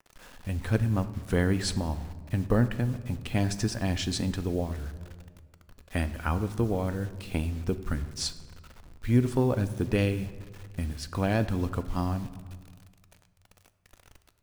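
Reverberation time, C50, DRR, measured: 1.7 s, 14.0 dB, 10.5 dB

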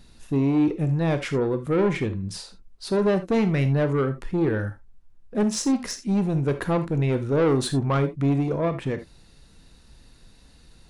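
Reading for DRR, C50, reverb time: 9.0 dB, 12.5 dB, no single decay rate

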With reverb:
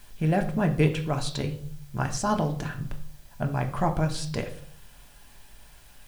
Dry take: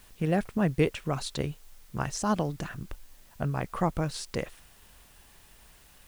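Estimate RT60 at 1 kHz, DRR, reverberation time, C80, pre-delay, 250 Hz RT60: 0.55 s, 5.0 dB, 0.55 s, 16.0 dB, 3 ms, 0.75 s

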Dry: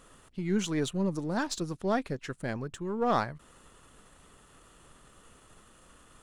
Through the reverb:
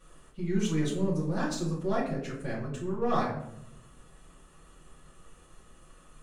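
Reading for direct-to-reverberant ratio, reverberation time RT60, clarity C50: -9.5 dB, 0.80 s, 5.0 dB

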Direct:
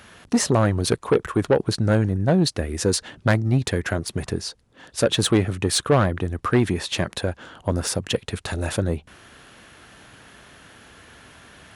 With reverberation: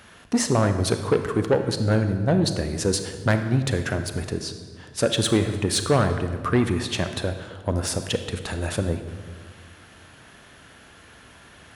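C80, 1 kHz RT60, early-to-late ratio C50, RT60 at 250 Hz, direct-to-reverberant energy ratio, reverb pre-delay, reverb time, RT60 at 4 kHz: 10.0 dB, 1.5 s, 8.5 dB, 2.1 s, 7.5 dB, 31 ms, 1.6 s, 1.1 s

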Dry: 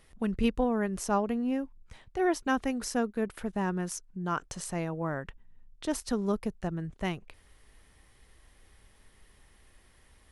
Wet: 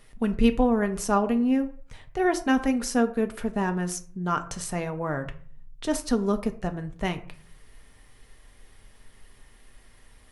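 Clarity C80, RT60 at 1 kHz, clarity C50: 19.0 dB, 0.45 s, 15.0 dB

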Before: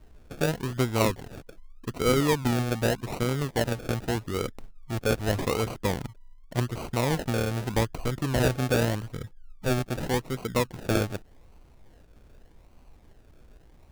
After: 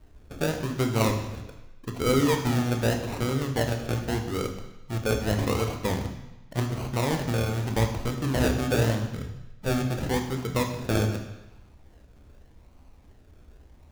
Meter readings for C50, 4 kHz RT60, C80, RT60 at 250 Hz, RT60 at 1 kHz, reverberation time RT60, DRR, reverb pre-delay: 8.0 dB, 1.1 s, 10.0 dB, 0.95 s, 1.1 s, 1.0 s, 4.0 dB, 17 ms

